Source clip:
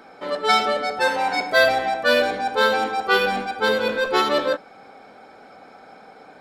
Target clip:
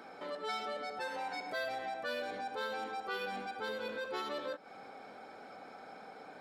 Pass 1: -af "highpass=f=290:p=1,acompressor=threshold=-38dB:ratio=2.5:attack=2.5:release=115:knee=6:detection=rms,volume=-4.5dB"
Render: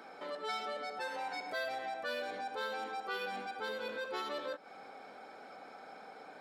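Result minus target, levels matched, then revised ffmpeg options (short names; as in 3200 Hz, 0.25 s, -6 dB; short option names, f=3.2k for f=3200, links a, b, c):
125 Hz band -4.0 dB
-af "highpass=f=100:p=1,acompressor=threshold=-38dB:ratio=2.5:attack=2.5:release=115:knee=6:detection=rms,volume=-4.5dB"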